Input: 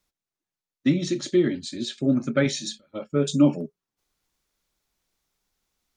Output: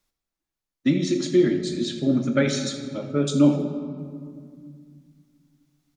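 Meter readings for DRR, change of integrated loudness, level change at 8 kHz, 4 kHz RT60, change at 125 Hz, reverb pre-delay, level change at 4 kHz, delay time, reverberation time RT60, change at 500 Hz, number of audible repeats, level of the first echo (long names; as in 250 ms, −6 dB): 5.5 dB, +1.0 dB, +0.5 dB, 1.1 s, +1.5 dB, 3 ms, +0.5 dB, 81 ms, 2.1 s, +2.0 dB, 1, −15.0 dB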